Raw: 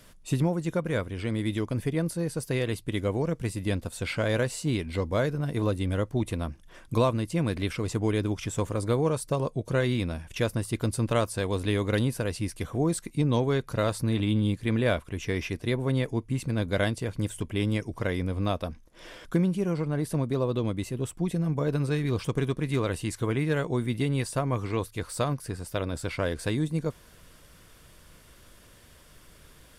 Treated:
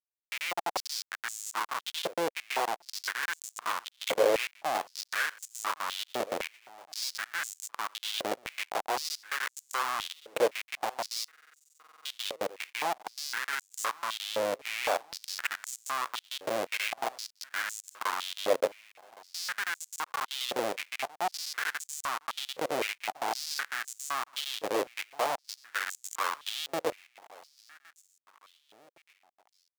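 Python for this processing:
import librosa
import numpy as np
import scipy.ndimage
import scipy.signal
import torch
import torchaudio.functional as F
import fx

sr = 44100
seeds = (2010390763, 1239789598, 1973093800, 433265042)

p1 = fx.rider(x, sr, range_db=4, speed_s=0.5)
p2 = fx.high_shelf_res(p1, sr, hz=4500.0, db=-9.0, q=1.5)
p3 = fx.schmitt(p2, sr, flips_db=-25.5)
p4 = p3 + fx.echo_feedback(p3, sr, ms=1114, feedback_pct=46, wet_db=-21, dry=0)
p5 = fx.buffer_glitch(p4, sr, at_s=(11.31,), block=2048, repeats=15)
p6 = fx.filter_held_highpass(p5, sr, hz=3.9, low_hz=520.0, high_hz=7100.0)
y = p6 * librosa.db_to_amplitude(2.0)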